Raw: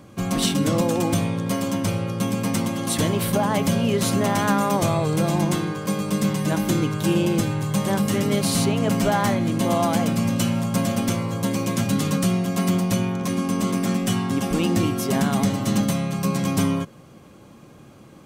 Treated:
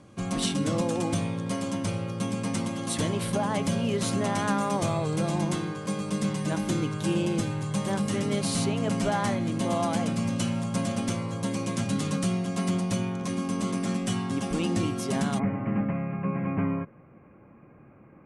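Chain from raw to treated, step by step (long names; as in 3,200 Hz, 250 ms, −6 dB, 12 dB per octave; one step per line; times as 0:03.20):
Butterworth low-pass 11,000 Hz 72 dB per octave, from 0:15.38 2,500 Hz
level −6 dB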